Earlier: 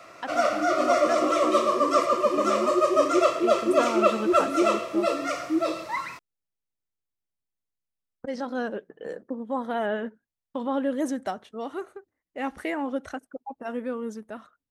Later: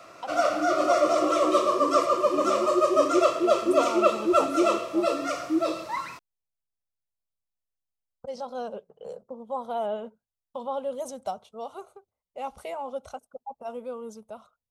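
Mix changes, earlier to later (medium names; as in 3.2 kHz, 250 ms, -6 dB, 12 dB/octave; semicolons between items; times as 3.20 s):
speech: add static phaser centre 730 Hz, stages 4; background: add peaking EQ 2 kHz -5.5 dB 0.46 oct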